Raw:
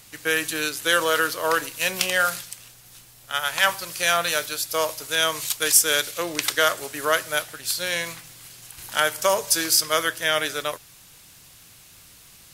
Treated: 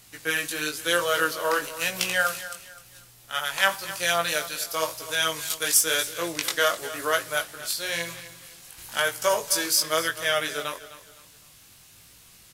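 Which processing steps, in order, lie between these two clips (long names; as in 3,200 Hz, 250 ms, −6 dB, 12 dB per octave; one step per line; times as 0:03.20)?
chorus effect 0.98 Hz, delay 17 ms, depth 3.9 ms
repeating echo 256 ms, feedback 32%, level −15 dB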